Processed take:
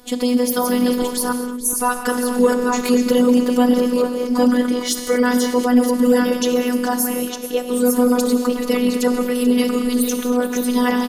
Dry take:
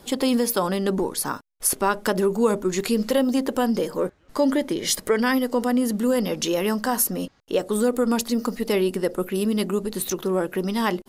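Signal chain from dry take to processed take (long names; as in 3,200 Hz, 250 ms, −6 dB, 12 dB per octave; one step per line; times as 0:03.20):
delay that plays each chunk backwards 574 ms, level −5 dB
time-frequency box erased 0:01.33–0:01.75, 490–5,700 Hz
on a send: single-tap delay 436 ms −15 dB
on the sum: reverb whose tail is shaped and stops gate 260 ms flat, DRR 8 dB
phases set to zero 247 Hz
automatic gain control gain up to 5 dB
in parallel at −3.5 dB: hard clipping −11.5 dBFS, distortion −15 dB
on the sum: level −1.5 dB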